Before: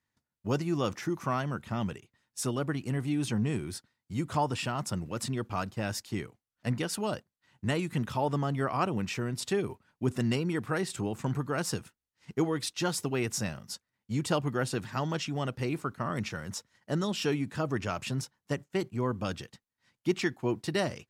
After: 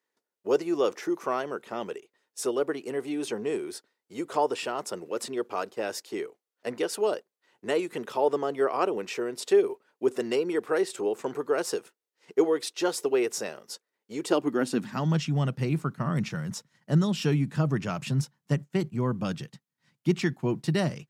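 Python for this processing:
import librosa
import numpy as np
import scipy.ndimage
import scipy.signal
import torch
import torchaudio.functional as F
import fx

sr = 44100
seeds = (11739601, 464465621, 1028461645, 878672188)

y = fx.filter_sweep_highpass(x, sr, from_hz=420.0, to_hz=150.0, start_s=14.19, end_s=15.19, q=3.6)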